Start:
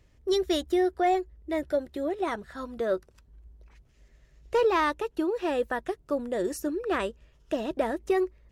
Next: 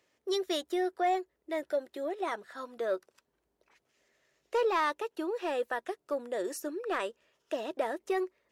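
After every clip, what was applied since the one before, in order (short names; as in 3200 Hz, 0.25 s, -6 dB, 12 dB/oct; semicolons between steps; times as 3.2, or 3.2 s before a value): HPF 410 Hz 12 dB/oct; in parallel at -3.5 dB: soft clip -22 dBFS, distortion -15 dB; on the sum: gain -6.5 dB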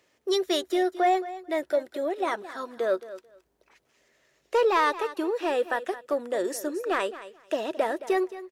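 feedback echo 0.219 s, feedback 17%, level -15 dB; gain +6 dB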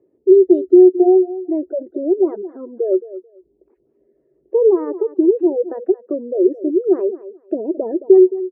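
spectral gate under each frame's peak -15 dB strong; synth low-pass 370 Hz, resonance Q 4.4; gain +5 dB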